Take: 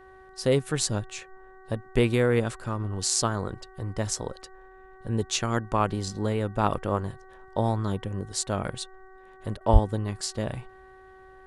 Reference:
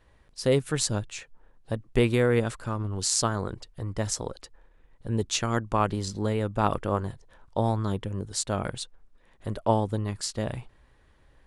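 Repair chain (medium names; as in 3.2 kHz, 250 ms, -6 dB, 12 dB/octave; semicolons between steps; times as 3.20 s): de-hum 378 Hz, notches 5; de-plosive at 9.72 s; interpolate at 9.57 s, 35 ms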